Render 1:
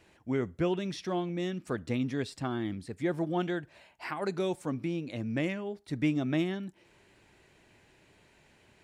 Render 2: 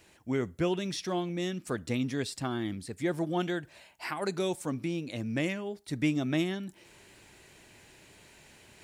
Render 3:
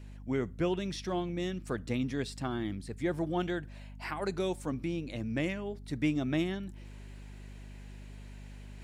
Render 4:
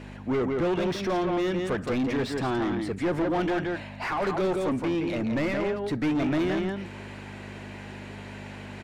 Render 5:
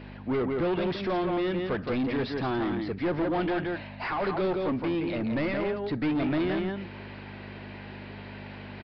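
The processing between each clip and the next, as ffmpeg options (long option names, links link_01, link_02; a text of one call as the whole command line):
ffmpeg -i in.wav -af "highshelf=frequency=4600:gain=11.5,areverse,acompressor=mode=upward:threshold=-49dB:ratio=2.5,areverse" out.wav
ffmpeg -i in.wav -af "highshelf=frequency=4900:gain=-7,aeval=exprs='val(0)+0.00631*(sin(2*PI*50*n/s)+sin(2*PI*2*50*n/s)/2+sin(2*PI*3*50*n/s)/3+sin(2*PI*4*50*n/s)/4+sin(2*PI*5*50*n/s)/5)':channel_layout=same,volume=-1.5dB" out.wav
ffmpeg -i in.wav -filter_complex "[0:a]asplit=2[link_01][link_02];[link_02]adelay=169.1,volume=-7dB,highshelf=frequency=4000:gain=-3.8[link_03];[link_01][link_03]amix=inputs=2:normalize=0,asplit=2[link_04][link_05];[link_05]highpass=frequency=720:poles=1,volume=28dB,asoftclip=type=tanh:threshold=-17.5dB[link_06];[link_04][link_06]amix=inputs=2:normalize=0,lowpass=frequency=1100:poles=1,volume=-6dB" out.wav
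ffmpeg -i in.wav -af "aresample=11025,aresample=44100,volume=-1.5dB" out.wav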